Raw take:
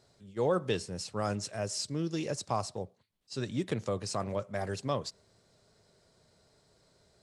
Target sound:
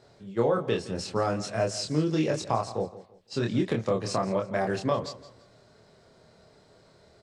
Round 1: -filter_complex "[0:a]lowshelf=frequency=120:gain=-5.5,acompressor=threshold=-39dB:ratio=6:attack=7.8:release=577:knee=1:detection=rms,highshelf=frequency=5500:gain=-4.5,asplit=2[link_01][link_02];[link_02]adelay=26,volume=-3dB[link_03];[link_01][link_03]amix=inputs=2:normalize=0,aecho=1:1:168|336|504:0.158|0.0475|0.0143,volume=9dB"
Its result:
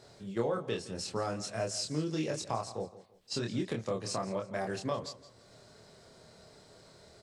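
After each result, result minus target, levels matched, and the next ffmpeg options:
downward compressor: peak gain reduction +8 dB; 8,000 Hz band +6.0 dB
-filter_complex "[0:a]lowshelf=frequency=120:gain=-5.5,acompressor=threshold=-29.5dB:ratio=6:attack=7.8:release=577:knee=1:detection=rms,highshelf=frequency=5500:gain=-4.5,asplit=2[link_01][link_02];[link_02]adelay=26,volume=-3dB[link_03];[link_01][link_03]amix=inputs=2:normalize=0,aecho=1:1:168|336|504:0.158|0.0475|0.0143,volume=9dB"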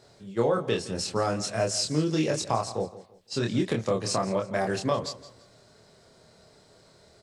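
8,000 Hz band +6.0 dB
-filter_complex "[0:a]lowshelf=frequency=120:gain=-5.5,acompressor=threshold=-29.5dB:ratio=6:attack=7.8:release=577:knee=1:detection=rms,highshelf=frequency=5500:gain=-15.5,asplit=2[link_01][link_02];[link_02]adelay=26,volume=-3dB[link_03];[link_01][link_03]amix=inputs=2:normalize=0,aecho=1:1:168|336|504:0.158|0.0475|0.0143,volume=9dB"

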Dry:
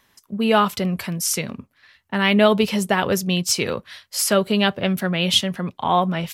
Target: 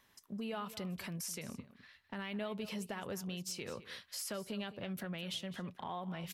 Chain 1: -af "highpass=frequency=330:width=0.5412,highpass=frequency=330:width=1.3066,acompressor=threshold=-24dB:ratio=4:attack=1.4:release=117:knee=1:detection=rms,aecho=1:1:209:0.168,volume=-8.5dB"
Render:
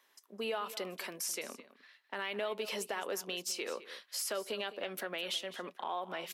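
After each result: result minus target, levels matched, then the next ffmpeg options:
250 Hz band −10.5 dB; downward compressor: peak gain reduction −5 dB
-af "acompressor=threshold=-24dB:ratio=4:attack=1.4:release=117:knee=1:detection=rms,aecho=1:1:209:0.168,volume=-8.5dB"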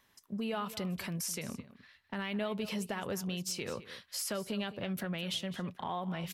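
downward compressor: peak gain reduction −5 dB
-af "acompressor=threshold=-30.5dB:ratio=4:attack=1.4:release=117:knee=1:detection=rms,aecho=1:1:209:0.168,volume=-8.5dB"

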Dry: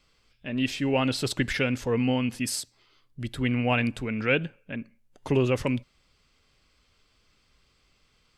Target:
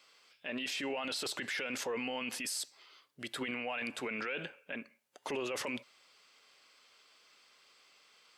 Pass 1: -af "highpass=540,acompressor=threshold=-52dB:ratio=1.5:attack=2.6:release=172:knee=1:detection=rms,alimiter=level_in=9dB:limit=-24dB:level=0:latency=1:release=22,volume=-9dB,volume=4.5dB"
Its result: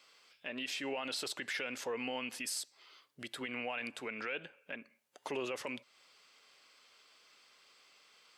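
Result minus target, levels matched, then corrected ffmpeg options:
downward compressor: peak gain reduction +12.5 dB
-af "highpass=540,alimiter=level_in=9dB:limit=-24dB:level=0:latency=1:release=22,volume=-9dB,volume=4.5dB"

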